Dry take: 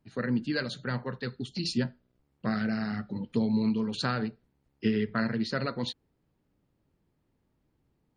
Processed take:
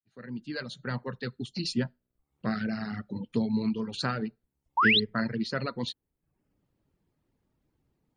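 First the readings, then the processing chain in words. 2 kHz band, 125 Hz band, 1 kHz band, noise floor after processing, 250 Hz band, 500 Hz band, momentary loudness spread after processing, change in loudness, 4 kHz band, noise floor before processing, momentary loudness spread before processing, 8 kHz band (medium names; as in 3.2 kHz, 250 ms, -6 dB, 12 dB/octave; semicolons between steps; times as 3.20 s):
+5.0 dB, -1.5 dB, +5.0 dB, -84 dBFS, -2.0 dB, -1.5 dB, 14 LU, +1.0 dB, +5.5 dB, -75 dBFS, 9 LU, no reading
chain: fade-in on the opening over 1.00 s; painted sound rise, 4.77–5.00 s, 850–4400 Hz -22 dBFS; reverb removal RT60 0.58 s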